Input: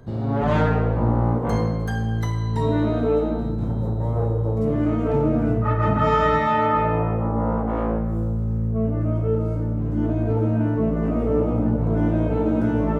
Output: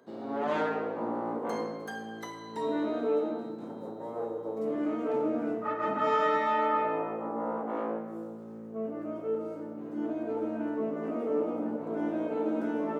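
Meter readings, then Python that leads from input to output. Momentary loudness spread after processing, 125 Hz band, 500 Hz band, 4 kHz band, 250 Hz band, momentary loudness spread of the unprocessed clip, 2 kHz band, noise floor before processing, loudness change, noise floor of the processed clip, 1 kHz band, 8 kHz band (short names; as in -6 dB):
13 LU, -29.5 dB, -7.0 dB, -7.0 dB, -10.5 dB, 5 LU, -7.0 dB, -24 dBFS, -10.0 dB, -43 dBFS, -7.0 dB, n/a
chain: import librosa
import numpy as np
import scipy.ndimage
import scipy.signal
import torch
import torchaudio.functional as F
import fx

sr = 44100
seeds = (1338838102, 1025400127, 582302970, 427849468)

y = scipy.signal.sosfilt(scipy.signal.butter(4, 260.0, 'highpass', fs=sr, output='sos'), x)
y = y * 10.0 ** (-7.0 / 20.0)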